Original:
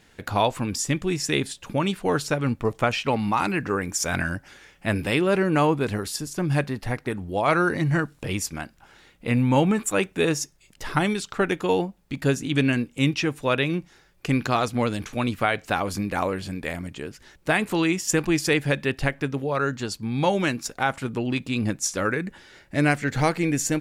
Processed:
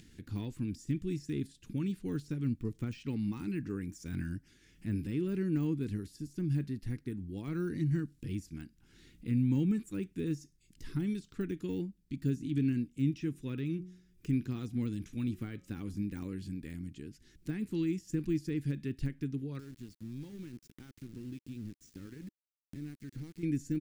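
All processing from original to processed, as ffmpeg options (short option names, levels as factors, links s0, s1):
-filter_complex "[0:a]asettb=1/sr,asplit=3[s0][s1][s2];[s0]atrim=end=13.074[s3];[s1]atrim=start=13.07:end=16.2,asetpts=PTS-STARTPTS,afade=t=in:d=0.004:c=qsin,afade=t=out:st=3.126:d=0.004:c=qsin,bandreject=f=4400:w=11,bandreject=f=181.7:t=h:w=4,bandreject=f=363.4:t=h:w=4,bandreject=f=545.1:t=h:w=4,bandreject=f=726.8:t=h:w=4,bandreject=f=908.5:t=h:w=4,bandreject=f=1090.2:t=h:w=4,bandreject=f=1271.9:t=h:w=4[s4];[s2]atrim=start=16.196[s5];[s3][s4]acrossfade=d=0.004:c1=hsin:c2=qsin[s6];[s6][s5]acrossfade=d=0.004:c1=qsin:c2=hsin,asettb=1/sr,asplit=3[s7][s8][s9];[s7]atrim=end=19.594[s10];[s8]atrim=start=19.59:end=23.43,asetpts=PTS-STARTPTS,afade=t=in:d=0.004:c=qsin,afade=t=out:st=3.836:d=0.004:c=qsin,acompressor=threshold=0.0251:ratio=3:attack=3.2:release=140:knee=1:detection=peak,aeval=exprs='val(0)*gte(abs(val(0)),0.0188)':c=same[s11];[s9]atrim=start=23.426[s12];[s10][s11]acrossfade=d=0.004:c1=hsin:c2=qsin[s13];[s13][s12]acrossfade=d=0.004:c1=qsin:c2=hsin,deesser=0.95,firequalizer=gain_entry='entry(310,0);entry(620,-28);entry(1700,-13);entry(4800,-6)':delay=0.05:min_phase=1,acompressor=mode=upward:threshold=0.01:ratio=2.5,volume=0.422"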